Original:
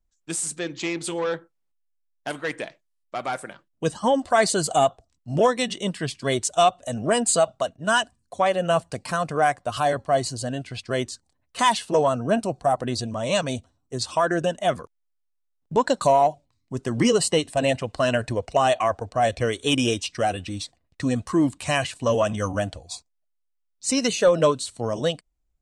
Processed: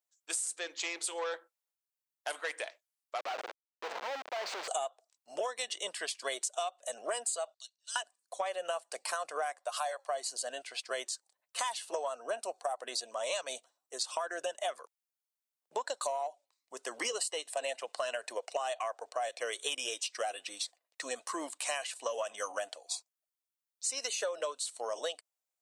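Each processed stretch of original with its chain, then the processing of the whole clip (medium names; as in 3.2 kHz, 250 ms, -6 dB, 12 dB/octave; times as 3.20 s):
3.18–4.68 s: compression 2.5:1, threshold -23 dBFS + Schmitt trigger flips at -35.5 dBFS + distance through air 200 m
7.54–7.96 s: ladder band-pass 4.6 kHz, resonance 75% + treble shelf 6.1 kHz +9.5 dB
9.63–10.09 s: Chebyshev high-pass 570 Hz, order 3 + band-stop 3 kHz, Q 18
whole clip: high-pass 520 Hz 24 dB/octave; treble shelf 5.8 kHz +8.5 dB; compression 12:1, threshold -27 dBFS; trim -4.5 dB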